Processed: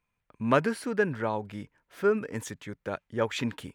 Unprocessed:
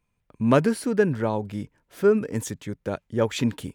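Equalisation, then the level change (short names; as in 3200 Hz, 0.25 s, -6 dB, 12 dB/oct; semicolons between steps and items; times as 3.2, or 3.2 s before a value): bell 1600 Hz +9 dB 2.7 oct; -8.5 dB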